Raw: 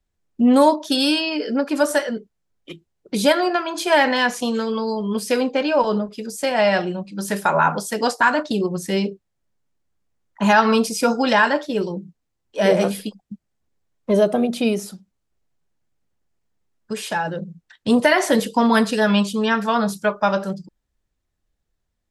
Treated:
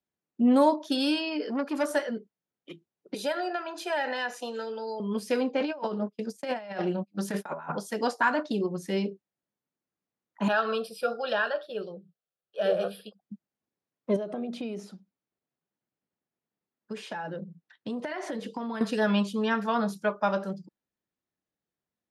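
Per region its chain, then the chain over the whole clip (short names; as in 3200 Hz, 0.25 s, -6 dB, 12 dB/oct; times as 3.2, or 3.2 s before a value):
1.42–1.95 high shelf 10000 Hz +4 dB + core saturation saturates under 1100 Hz
3.14–5 HPF 440 Hz + compressor 2:1, threshold -19 dBFS + notch comb 1100 Hz
5.6–7.72 gate -32 dBFS, range -31 dB + negative-ratio compressor -23 dBFS, ratio -0.5 + Doppler distortion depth 0.11 ms
10.48–13.21 low shelf 140 Hz -9.5 dB + fixed phaser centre 1400 Hz, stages 8
14.16–18.81 air absorption 53 m + compressor 8:1, threshold -23 dBFS
whole clip: Chebyshev high-pass 200 Hz, order 2; high shelf 4500 Hz -7.5 dB; notch 7800 Hz, Q 14; gain -6.5 dB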